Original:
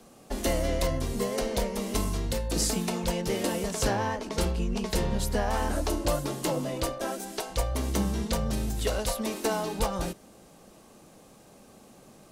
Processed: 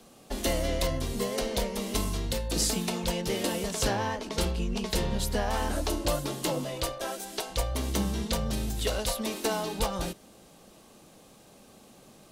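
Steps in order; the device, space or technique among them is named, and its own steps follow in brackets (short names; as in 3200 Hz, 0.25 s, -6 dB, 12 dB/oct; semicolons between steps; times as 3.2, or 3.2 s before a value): presence and air boost (bell 3500 Hz +5 dB 1 oct; high shelf 11000 Hz +4 dB); 6.64–7.33 bell 250 Hz -8.5 dB 0.74 oct; gain -1.5 dB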